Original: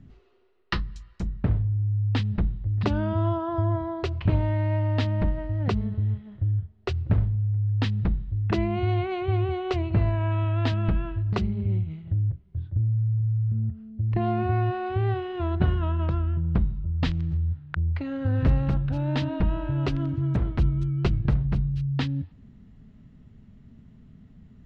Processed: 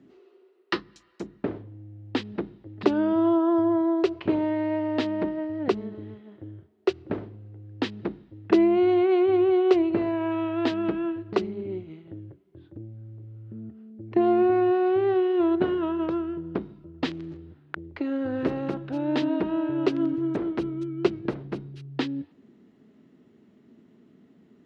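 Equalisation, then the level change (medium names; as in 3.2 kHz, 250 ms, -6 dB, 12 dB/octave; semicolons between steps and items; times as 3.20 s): resonant high-pass 340 Hz, resonance Q 3.4; 0.0 dB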